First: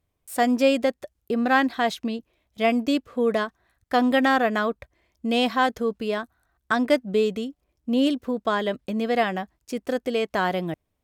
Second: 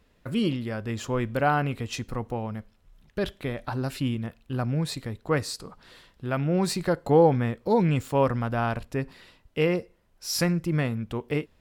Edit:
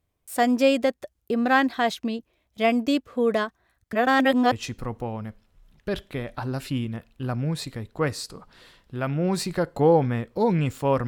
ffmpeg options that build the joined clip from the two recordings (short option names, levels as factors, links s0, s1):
-filter_complex "[0:a]apad=whole_dur=11.07,atrim=end=11.07,asplit=2[s0][s1];[s0]atrim=end=3.932[s2];[s1]atrim=start=3.928:end=4.522,asetpts=PTS-STARTPTS,areverse[s3];[1:a]atrim=start=1.818:end=8.37[s4];[s2][s3]acrossfade=d=0.004:c1=hsin:c2=hsin[s5];[s5][s4]acrossfade=d=0.004:c1=hsin:c2=hsin"